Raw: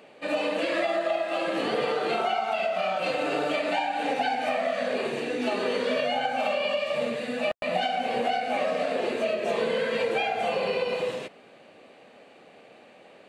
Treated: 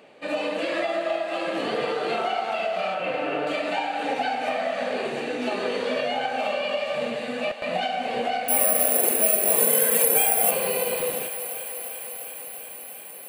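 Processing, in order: 2.94–3.47 steep low-pass 3100 Hz 48 dB/oct; 8.48–10.51 careless resampling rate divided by 4×, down none, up zero stuff; thinning echo 0.348 s, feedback 82%, high-pass 330 Hz, level -12 dB

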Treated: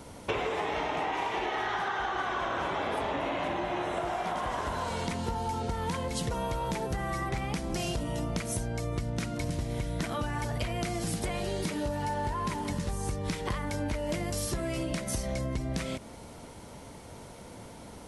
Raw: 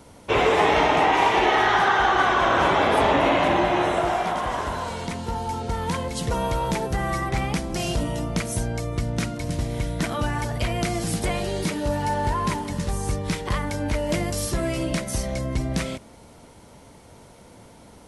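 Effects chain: compressor 12:1, threshold -30 dBFS, peak gain reduction 15.5 dB; gain +1.5 dB

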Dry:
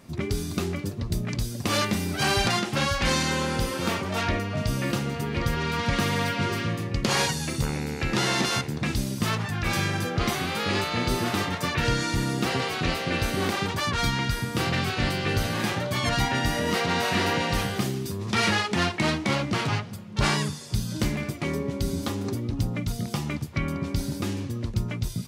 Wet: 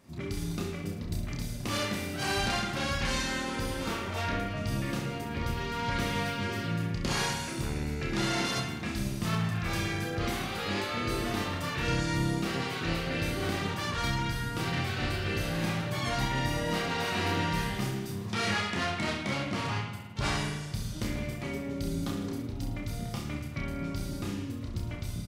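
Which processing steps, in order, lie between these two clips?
reverse bouncing-ball echo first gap 30 ms, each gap 1.2×, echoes 5; spring tank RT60 1.2 s, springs 54 ms, chirp 75 ms, DRR 4.5 dB; gain -9 dB

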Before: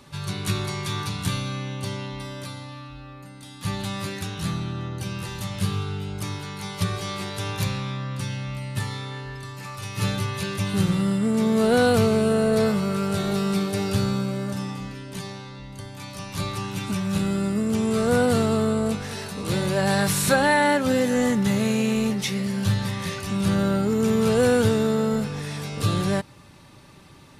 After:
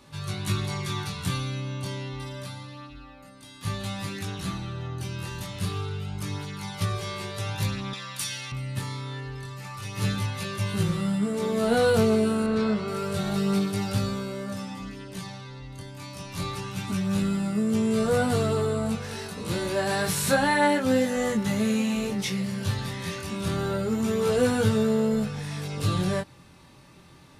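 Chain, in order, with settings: chorus 0.28 Hz, delay 18.5 ms, depth 5.1 ms; 7.93–8.52 tilt +4.5 dB/oct; 12.46–12.88 LPF 4500 Hz 12 dB/oct

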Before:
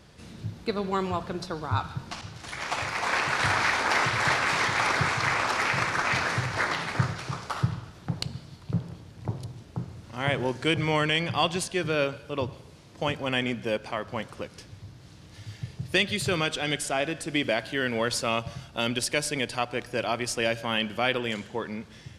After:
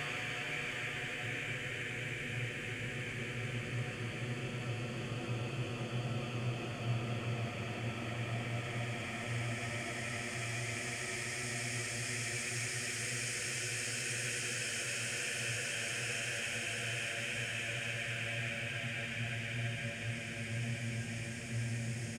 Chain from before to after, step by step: Wiener smoothing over 9 samples; ten-band EQ 125 Hz +7 dB, 250 Hz -6 dB, 500 Hz -7 dB, 1000 Hz -10 dB, 2000 Hz +6 dB, 8000 Hz +10 dB; negative-ratio compressor -30 dBFS, ratio -0.5; harmonic tremolo 1.4 Hz, depth 100%, crossover 480 Hz; on a send: echo 0.38 s -10 dB; on the sum: Paulstretch 24×, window 0.50 s, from 19.74; gain -4 dB

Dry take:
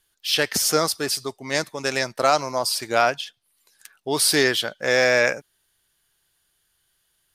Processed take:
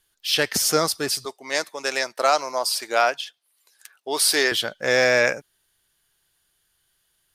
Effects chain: 1.25–4.52 HPF 410 Hz 12 dB/oct

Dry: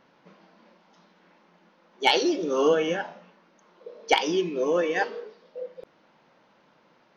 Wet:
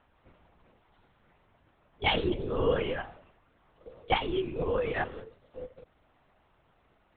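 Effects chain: LPC vocoder at 8 kHz whisper; gain -5.5 dB

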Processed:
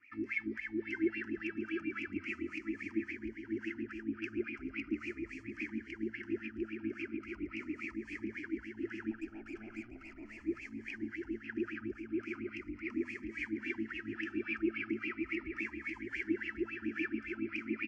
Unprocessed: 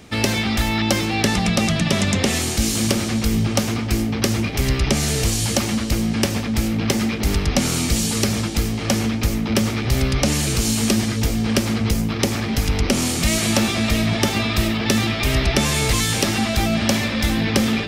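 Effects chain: elliptic band-stop 330–1200 Hz, stop band 40 dB; low shelf 120 Hz +7.5 dB; limiter -13 dBFS, peak gain reduction 10 dB; wah 3.6 Hz 310–2600 Hz, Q 12; 9.11–10.41 tube stage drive 49 dB, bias 0.7; air absorption 140 m; fixed phaser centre 760 Hz, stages 8; outdoor echo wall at 120 m, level -7 dB; cascading phaser falling 0.39 Hz; gain +6.5 dB

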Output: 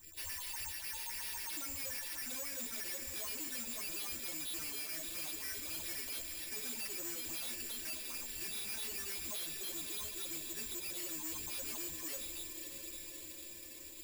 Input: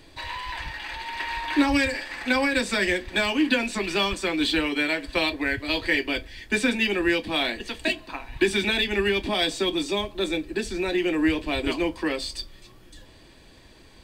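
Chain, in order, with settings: in parallel at -1.5 dB: negative-ratio compressor -31 dBFS; on the sum: pre-emphasis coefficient 0.8; metallic resonator 78 Hz, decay 0.22 s, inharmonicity 0.008; phaser stages 4, 3.7 Hz, lowest notch 110–1100 Hz; on a send: diffused feedback echo 0.622 s, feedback 72%, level -12.5 dB; on the sum: careless resampling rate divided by 6×, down filtered, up zero stuff; slew limiter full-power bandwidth 180 Hz

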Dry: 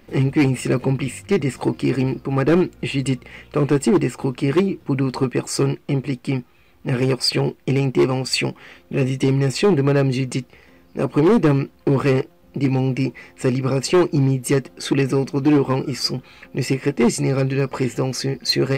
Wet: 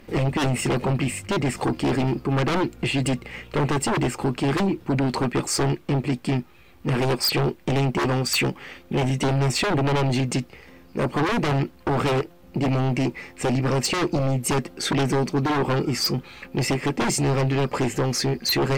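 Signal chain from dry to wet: sine folder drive 6 dB, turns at -10 dBFS; gain -7.5 dB

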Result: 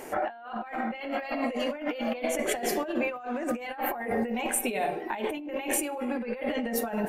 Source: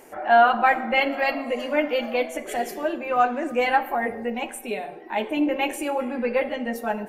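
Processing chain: high shelf 8700 Hz -3 dB, from 3.09 s +4.5 dB; negative-ratio compressor -33 dBFS, ratio -1

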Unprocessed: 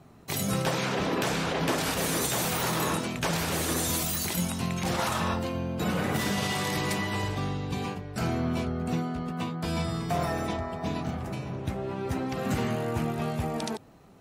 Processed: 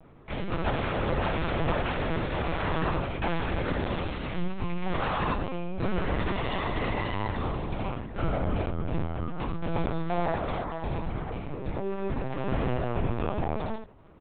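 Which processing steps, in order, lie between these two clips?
median filter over 9 samples; early reflections 18 ms -8 dB, 74 ms -6 dB; LPC vocoder at 8 kHz pitch kept

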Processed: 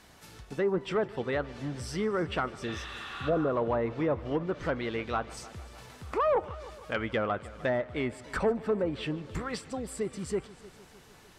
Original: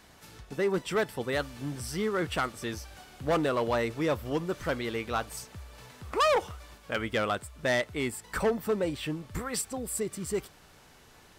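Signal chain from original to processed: spectral repair 2.69–3.46, 720–4700 Hz both; treble ducked by the level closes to 1100 Hz, closed at -23.5 dBFS; multi-head echo 0.152 s, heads first and second, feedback 59%, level -22 dB

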